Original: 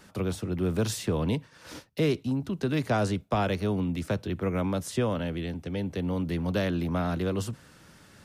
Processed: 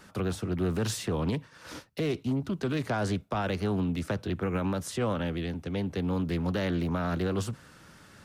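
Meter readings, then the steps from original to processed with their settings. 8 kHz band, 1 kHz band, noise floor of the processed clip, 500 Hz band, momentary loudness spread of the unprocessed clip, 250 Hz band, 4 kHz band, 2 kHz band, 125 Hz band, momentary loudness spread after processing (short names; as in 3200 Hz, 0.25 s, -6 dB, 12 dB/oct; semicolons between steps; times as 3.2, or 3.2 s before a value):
-1.0 dB, -1.5 dB, -55 dBFS, -2.0 dB, 6 LU, -1.0 dB, -1.0 dB, -0.5 dB, -1.5 dB, 4 LU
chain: bell 1300 Hz +3.5 dB 0.77 oct; limiter -20.5 dBFS, peak gain reduction 7.5 dB; Doppler distortion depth 0.26 ms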